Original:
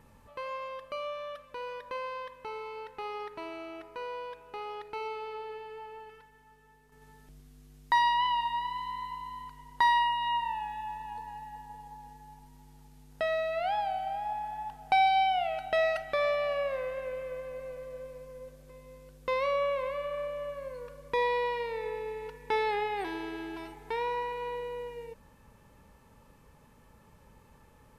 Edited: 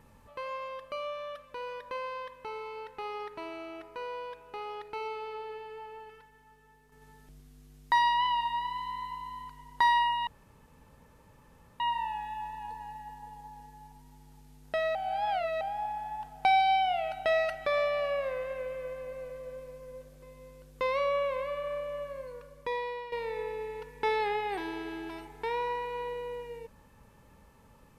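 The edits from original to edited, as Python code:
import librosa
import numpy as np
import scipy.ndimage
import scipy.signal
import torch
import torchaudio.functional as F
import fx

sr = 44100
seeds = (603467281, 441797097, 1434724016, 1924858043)

y = fx.edit(x, sr, fx.insert_room_tone(at_s=10.27, length_s=1.53),
    fx.reverse_span(start_s=13.42, length_s=0.66),
    fx.fade_out_to(start_s=20.53, length_s=1.06, floor_db=-11.0), tone=tone)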